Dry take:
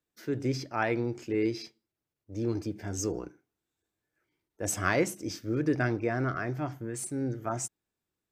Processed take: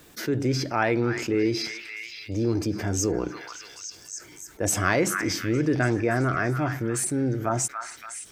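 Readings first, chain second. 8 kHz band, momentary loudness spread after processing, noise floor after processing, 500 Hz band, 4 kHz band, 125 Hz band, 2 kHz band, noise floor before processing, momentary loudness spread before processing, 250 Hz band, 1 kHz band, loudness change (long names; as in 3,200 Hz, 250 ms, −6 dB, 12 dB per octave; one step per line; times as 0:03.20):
+8.5 dB, 14 LU, −49 dBFS, +5.5 dB, +10.5 dB, +6.5 dB, +7.0 dB, below −85 dBFS, 9 LU, +6.0 dB, +6.5 dB, +6.0 dB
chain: echo through a band-pass that steps 286 ms, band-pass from 1,600 Hz, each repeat 0.7 octaves, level −9 dB
envelope flattener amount 50%
level +2.5 dB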